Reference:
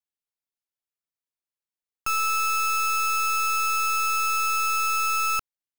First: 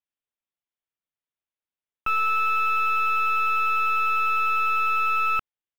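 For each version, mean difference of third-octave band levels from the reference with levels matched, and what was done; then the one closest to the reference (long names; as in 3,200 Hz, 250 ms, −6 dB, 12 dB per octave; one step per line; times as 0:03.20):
6.5 dB: downsampling to 8,000 Hz
in parallel at −10 dB: log-companded quantiser 4 bits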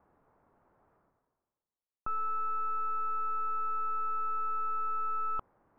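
15.0 dB: inverse Chebyshev low-pass filter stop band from 5,100 Hz, stop band 70 dB
reversed playback
upward compression, threshold −36 dBFS
reversed playback
level −2.5 dB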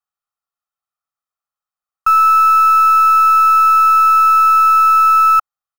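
10.0 dB: flat-topped bell 1,100 Hz +14.5 dB 1.2 octaves
comb filter 1.6 ms, depth 84%
level −3 dB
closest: first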